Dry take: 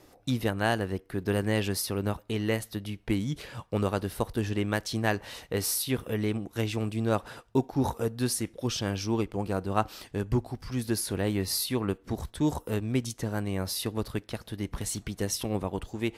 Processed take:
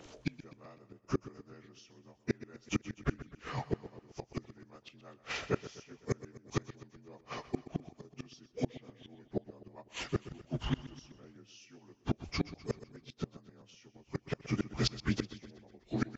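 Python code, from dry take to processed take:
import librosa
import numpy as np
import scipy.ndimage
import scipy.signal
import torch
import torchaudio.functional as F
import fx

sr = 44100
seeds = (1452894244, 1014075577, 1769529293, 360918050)

p1 = fx.partial_stretch(x, sr, pct=83)
p2 = fx.gate_flip(p1, sr, shuts_db=-26.0, range_db=-32)
p3 = fx.hpss(p2, sr, part='harmonic', gain_db=-6)
p4 = p3 + fx.echo_feedback(p3, sr, ms=126, feedback_pct=56, wet_db=-15.5, dry=0)
y = p4 * librosa.db_to_amplitude(8.0)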